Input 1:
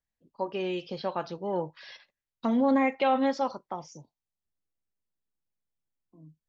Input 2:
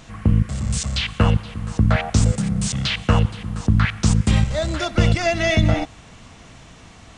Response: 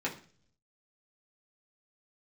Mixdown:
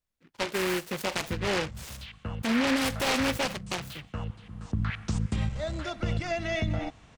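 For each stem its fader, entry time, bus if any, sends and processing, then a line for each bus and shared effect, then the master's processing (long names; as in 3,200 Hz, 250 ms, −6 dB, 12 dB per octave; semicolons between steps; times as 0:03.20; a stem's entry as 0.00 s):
+3.0 dB, 0.00 s, no send, short delay modulated by noise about 1,700 Hz, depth 0.24 ms
0:04.15 −19.5 dB → 0:04.88 −10 dB, 1.05 s, no send, high-shelf EQ 5,700 Hz −7.5 dB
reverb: not used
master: brickwall limiter −19 dBFS, peak gain reduction 8 dB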